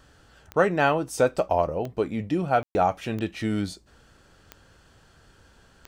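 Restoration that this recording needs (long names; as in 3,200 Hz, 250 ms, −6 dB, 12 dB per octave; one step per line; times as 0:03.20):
click removal
ambience match 0:02.63–0:02.75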